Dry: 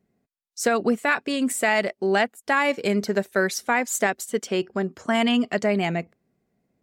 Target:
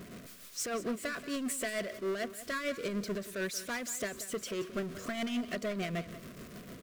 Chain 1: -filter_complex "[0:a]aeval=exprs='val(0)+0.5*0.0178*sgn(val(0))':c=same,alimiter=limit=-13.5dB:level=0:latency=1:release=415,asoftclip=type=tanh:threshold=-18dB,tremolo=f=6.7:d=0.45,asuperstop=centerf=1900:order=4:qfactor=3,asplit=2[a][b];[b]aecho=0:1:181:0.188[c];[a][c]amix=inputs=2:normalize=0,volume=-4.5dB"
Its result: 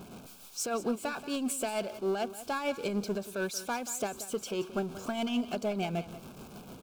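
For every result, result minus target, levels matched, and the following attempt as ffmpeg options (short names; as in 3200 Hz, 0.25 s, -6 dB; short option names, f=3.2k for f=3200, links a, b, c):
soft clip: distortion -7 dB; 2000 Hz band -4.5 dB
-filter_complex "[0:a]aeval=exprs='val(0)+0.5*0.0178*sgn(val(0))':c=same,alimiter=limit=-13.5dB:level=0:latency=1:release=415,asoftclip=type=tanh:threshold=-24.5dB,tremolo=f=6.7:d=0.45,asuperstop=centerf=1900:order=4:qfactor=3,asplit=2[a][b];[b]aecho=0:1:181:0.188[c];[a][c]amix=inputs=2:normalize=0,volume=-4.5dB"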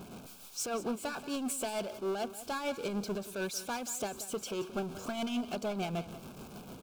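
2000 Hz band -4.5 dB
-filter_complex "[0:a]aeval=exprs='val(0)+0.5*0.0178*sgn(val(0))':c=same,alimiter=limit=-13.5dB:level=0:latency=1:release=415,asoftclip=type=tanh:threshold=-24.5dB,tremolo=f=6.7:d=0.45,asuperstop=centerf=840:order=4:qfactor=3,asplit=2[a][b];[b]aecho=0:1:181:0.188[c];[a][c]amix=inputs=2:normalize=0,volume=-4.5dB"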